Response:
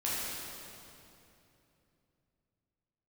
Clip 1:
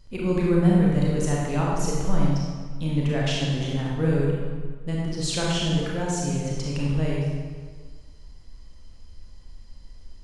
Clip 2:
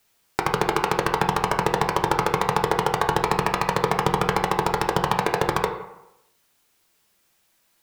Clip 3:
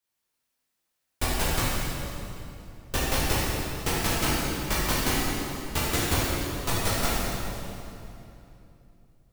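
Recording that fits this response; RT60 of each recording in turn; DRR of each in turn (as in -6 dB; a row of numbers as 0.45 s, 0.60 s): 3; 1.6 s, 0.90 s, 2.9 s; -4.5 dB, 3.5 dB, -8.5 dB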